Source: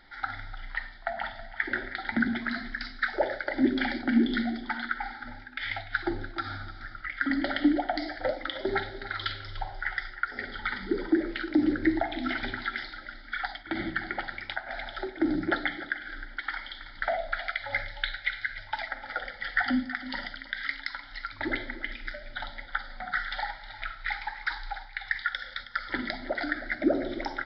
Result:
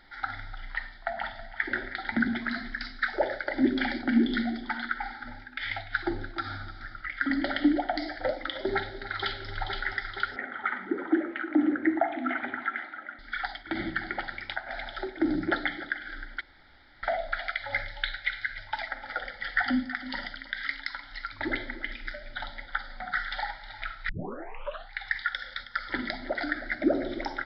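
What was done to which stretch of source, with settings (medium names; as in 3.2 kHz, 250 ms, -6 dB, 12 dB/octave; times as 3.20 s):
8.75–9.48 s: echo throw 470 ms, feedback 70%, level -4.5 dB
10.36–13.19 s: cabinet simulation 270–2400 Hz, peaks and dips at 270 Hz +5 dB, 420 Hz -5 dB, 700 Hz +5 dB, 1.2 kHz +6 dB
16.41–17.03 s: room tone
24.09 s: tape start 0.84 s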